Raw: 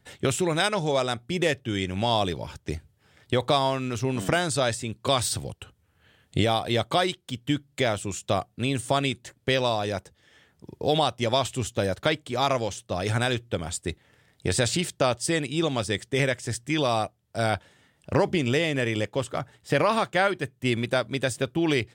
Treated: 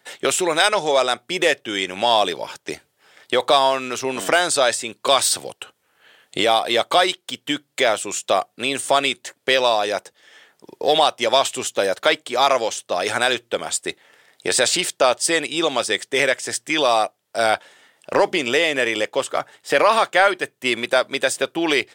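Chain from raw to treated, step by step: high-pass 470 Hz 12 dB/octave; in parallel at -4.5 dB: saturation -20 dBFS, distortion -12 dB; on the sum: trim +5.5 dB

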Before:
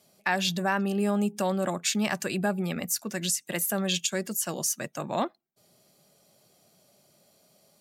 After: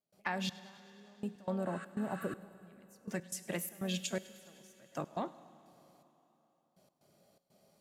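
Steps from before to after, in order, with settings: spectral replace 1.69–2.64 s, 1.1–9.7 kHz before; treble shelf 2.4 kHz -9.5 dB; compression 10:1, threshold -29 dBFS, peak gain reduction 7.5 dB; feedback comb 61 Hz, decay 0.36 s, harmonics odd, mix 50%; harmony voices +3 st -15 dB; trance gate ".xxx......x.xxx" 122 bpm -24 dB; feedback echo behind a high-pass 102 ms, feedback 72%, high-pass 2.2 kHz, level -20 dB; Schroeder reverb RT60 3.6 s, combs from 31 ms, DRR 16 dB; trim +2 dB

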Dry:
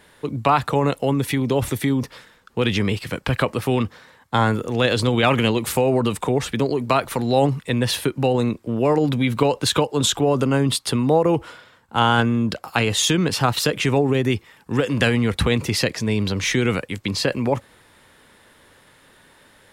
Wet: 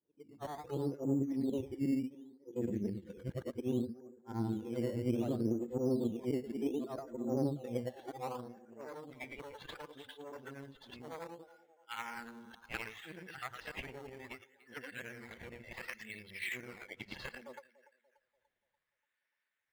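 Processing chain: short-time spectra conjugated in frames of 231 ms; spectral noise reduction 19 dB; low-pass that closes with the level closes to 950 Hz, closed at -18.5 dBFS; on a send: band-passed feedback delay 291 ms, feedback 52%, band-pass 880 Hz, level -15 dB; on the sum: valve stage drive 15 dB, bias 0.7; band-pass sweep 330 Hz -> 2.2 kHz, 7.45–8.84 s; dynamic bell 390 Hz, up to -5 dB, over -47 dBFS, Q 2; in parallel at -5 dB: decimation with a swept rate 12×, swing 100% 0.66 Hz; on the sum: bass shelf 150 Hz +9.5 dB; trim -5 dB

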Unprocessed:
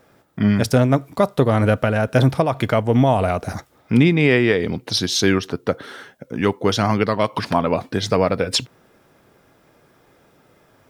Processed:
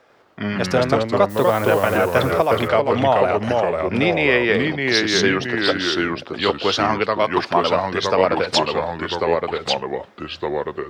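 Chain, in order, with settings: three-band isolator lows -13 dB, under 390 Hz, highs -17 dB, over 6.1 kHz; 1.29–1.96 s: added noise blue -42 dBFS; ever faster or slower copies 98 ms, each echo -2 st, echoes 2; trim +2 dB

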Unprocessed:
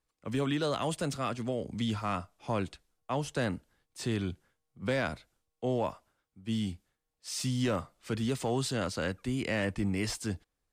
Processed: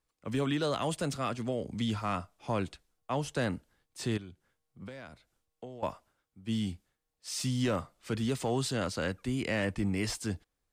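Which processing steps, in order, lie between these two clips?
4.17–5.83 s: compression 8:1, threshold -43 dBFS, peak gain reduction 16.5 dB

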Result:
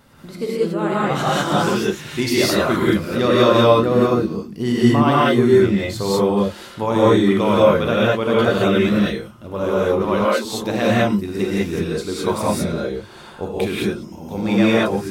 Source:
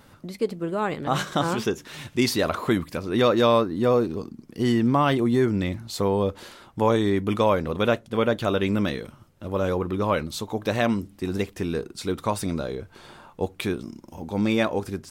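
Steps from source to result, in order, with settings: 10.04–10.45 s: brick-wall FIR high-pass 200 Hz; gated-style reverb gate 230 ms rising, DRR -7 dB; trim -1 dB

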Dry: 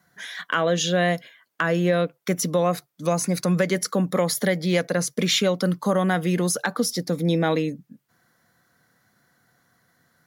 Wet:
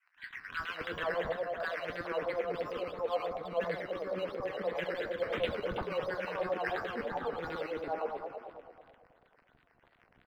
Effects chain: spectral sustain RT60 1.84 s; 3.29–4.75 s: de-esser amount 65%; high-pass 210 Hz; in parallel at -2.5 dB: compression, threshold -33 dBFS, peak gain reduction 18 dB; on the sum: hard clipper -11 dBFS, distortion -22 dB; LFO band-pass saw down 9.2 Hz 420–3200 Hz; flange 0.88 Hz, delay 4.3 ms, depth 7.1 ms, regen +46%; crackle 270 per s -43 dBFS; decimation with a swept rate 10×, swing 60% 2.9 Hz; distance through air 420 m; three bands offset in time highs, lows, mids 160/450 ms, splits 390/1200 Hz

